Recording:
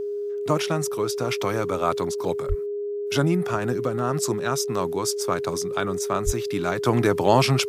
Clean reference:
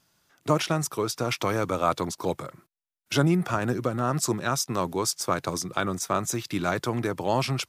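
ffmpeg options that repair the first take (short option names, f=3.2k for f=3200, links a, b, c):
-filter_complex "[0:a]bandreject=f=410:w=30,asplit=3[a][b][c];[a]afade=t=out:st=2.48:d=0.02[d];[b]highpass=f=140:w=0.5412,highpass=f=140:w=1.3066,afade=t=in:st=2.48:d=0.02,afade=t=out:st=2.6:d=0.02[e];[c]afade=t=in:st=2.6:d=0.02[f];[d][e][f]amix=inputs=3:normalize=0,asplit=3[g][h][i];[g]afade=t=out:st=6.25:d=0.02[j];[h]highpass=f=140:w=0.5412,highpass=f=140:w=1.3066,afade=t=in:st=6.25:d=0.02,afade=t=out:st=6.37:d=0.02[k];[i]afade=t=in:st=6.37:d=0.02[l];[j][k][l]amix=inputs=3:normalize=0,asetnsamples=n=441:p=0,asendcmd='6.85 volume volume -7dB',volume=0dB"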